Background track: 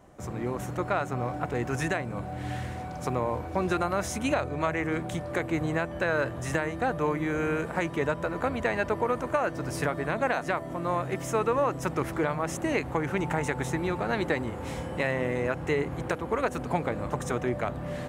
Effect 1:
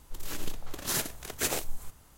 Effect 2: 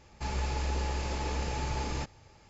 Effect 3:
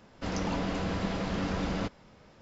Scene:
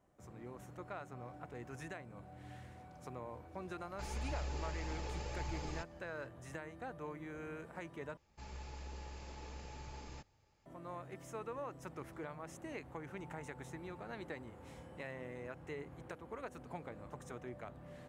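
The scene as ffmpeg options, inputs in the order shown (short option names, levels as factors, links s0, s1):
-filter_complex "[2:a]asplit=2[s0][s1];[0:a]volume=0.119[s2];[s0]flanger=delay=0.9:depth=1.8:regen=46:speed=1.8:shape=triangular[s3];[s2]asplit=2[s4][s5];[s4]atrim=end=8.174[s6];[s1]atrim=end=2.49,asetpts=PTS-STARTPTS,volume=0.15[s7];[s5]atrim=start=10.656[s8];[s3]atrim=end=2.49,asetpts=PTS-STARTPTS,volume=0.473,afade=t=in:d=0.004:c=hsin,afade=t=out:st=2.486:d=0.004:c=hsin,adelay=3780[s9];[s6][s7]acrossfade=d=0.004:c1=hsin:c2=hsin[s10];[s10][s8]acrossfade=d=0.004:c1=hsin:c2=hsin[s11];[s11][s9]amix=inputs=2:normalize=0"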